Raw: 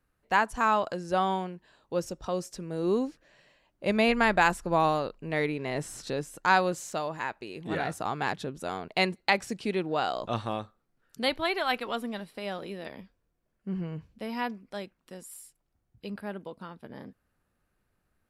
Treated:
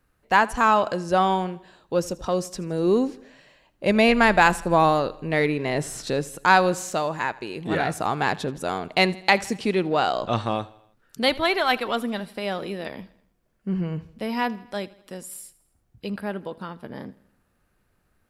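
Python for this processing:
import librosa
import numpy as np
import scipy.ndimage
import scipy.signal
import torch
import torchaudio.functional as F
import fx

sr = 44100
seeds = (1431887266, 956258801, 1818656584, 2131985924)

p1 = fx.steep_lowpass(x, sr, hz=9100.0, slope=36, at=(10.07, 10.56))
p2 = 10.0 ** (-25.0 / 20.0) * np.tanh(p1 / 10.0 ** (-25.0 / 20.0))
p3 = p1 + (p2 * librosa.db_to_amplitude(-10.0))
p4 = fx.echo_feedback(p3, sr, ms=81, feedback_pct=54, wet_db=-21.0)
y = p4 * librosa.db_to_amplitude(5.0)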